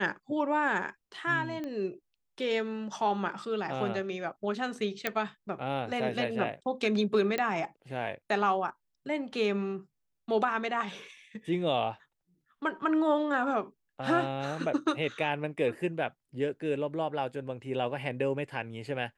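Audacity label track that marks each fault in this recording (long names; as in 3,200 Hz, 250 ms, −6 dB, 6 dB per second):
1.640000	1.640000	click −25 dBFS
5.070000	5.070000	click −13 dBFS
7.380000	7.380000	click −16 dBFS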